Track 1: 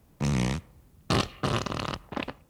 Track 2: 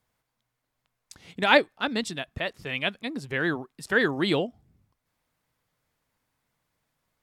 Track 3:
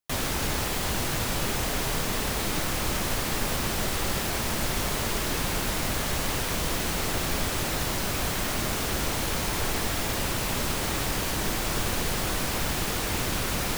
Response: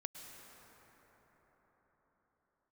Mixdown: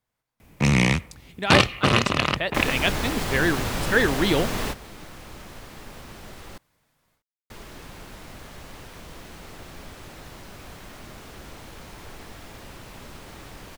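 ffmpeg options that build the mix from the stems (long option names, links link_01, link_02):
-filter_complex "[0:a]equalizer=frequency=2300:width=1.9:gain=10,bandreject=frequency=60:width_type=h:width=6,bandreject=frequency=120:width_type=h:width=6,acontrast=55,adelay=400,volume=1dB[link_01];[1:a]dynaudnorm=framelen=420:gausssize=3:maxgain=14dB,volume=-6dB,asplit=2[link_02][link_03];[2:a]highshelf=frequency=4900:gain=-8,adelay=2450,volume=2dB,asplit=3[link_04][link_05][link_06];[link_04]atrim=end=6.58,asetpts=PTS-STARTPTS,afade=type=out:start_time=6.576:duration=0.004:curve=hsin[link_07];[link_05]atrim=start=6.58:end=7.5,asetpts=PTS-STARTPTS,volume=0[link_08];[link_06]atrim=start=7.5,asetpts=PTS-STARTPTS,afade=type=in:duration=0.004:curve=hsin[link_09];[link_07][link_08][link_09]concat=n=3:v=0:a=1[link_10];[link_03]apad=whole_len=715432[link_11];[link_10][link_11]sidechaingate=range=-15dB:threshold=-55dB:ratio=16:detection=peak[link_12];[link_01][link_02][link_12]amix=inputs=3:normalize=0"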